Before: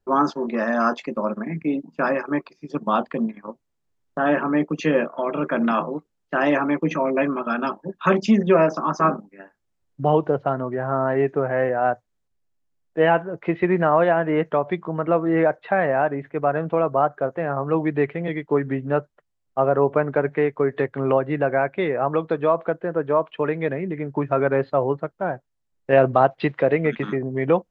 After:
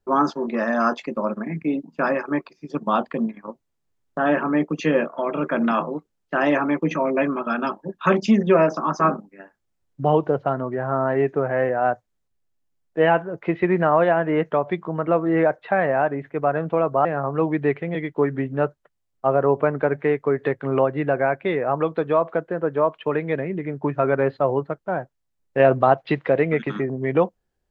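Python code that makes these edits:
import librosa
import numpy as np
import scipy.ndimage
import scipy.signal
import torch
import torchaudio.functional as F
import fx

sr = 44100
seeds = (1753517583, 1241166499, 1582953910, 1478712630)

y = fx.edit(x, sr, fx.cut(start_s=17.05, length_s=0.33), tone=tone)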